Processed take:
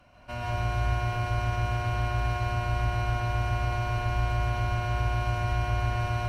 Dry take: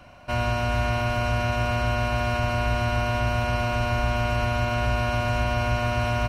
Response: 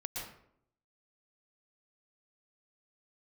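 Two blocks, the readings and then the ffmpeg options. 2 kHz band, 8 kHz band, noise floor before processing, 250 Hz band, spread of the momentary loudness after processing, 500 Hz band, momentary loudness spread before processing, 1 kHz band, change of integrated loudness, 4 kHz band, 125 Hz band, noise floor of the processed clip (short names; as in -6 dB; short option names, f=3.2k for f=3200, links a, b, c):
-7.0 dB, -6.5 dB, -28 dBFS, -9.5 dB, 1 LU, -9.0 dB, 0 LU, -4.5 dB, -4.0 dB, -7.5 dB, -2.0 dB, -37 dBFS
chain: -filter_complex "[1:a]atrim=start_sample=2205,afade=t=out:st=0.36:d=0.01,atrim=end_sample=16317,asetrate=38367,aresample=44100[a];[0:a][a]afir=irnorm=-1:irlink=0,volume=-7dB"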